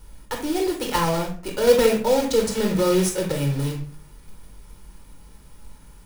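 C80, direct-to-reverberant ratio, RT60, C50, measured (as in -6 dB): 13.5 dB, 1.5 dB, 0.45 s, 7.0 dB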